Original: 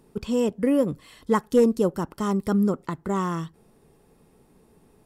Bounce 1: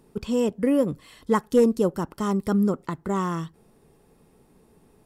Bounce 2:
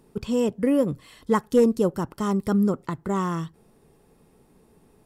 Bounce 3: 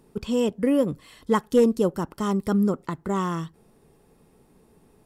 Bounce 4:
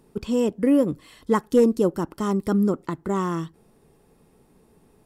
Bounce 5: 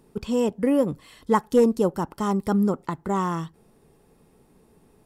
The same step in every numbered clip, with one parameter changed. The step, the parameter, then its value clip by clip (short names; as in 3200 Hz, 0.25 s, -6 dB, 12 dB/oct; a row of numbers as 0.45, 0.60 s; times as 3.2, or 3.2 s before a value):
dynamic EQ, frequency: 10000, 120, 3200, 320, 840 Hz